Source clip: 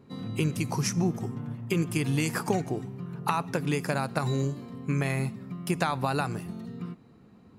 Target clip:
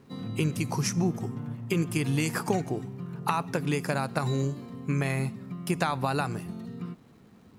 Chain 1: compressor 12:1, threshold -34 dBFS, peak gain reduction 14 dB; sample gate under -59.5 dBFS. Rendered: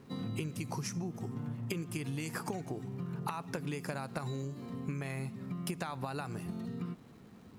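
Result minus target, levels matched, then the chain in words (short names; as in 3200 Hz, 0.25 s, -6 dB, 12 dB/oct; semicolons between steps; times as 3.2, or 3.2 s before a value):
compressor: peak gain reduction +14 dB
sample gate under -59.5 dBFS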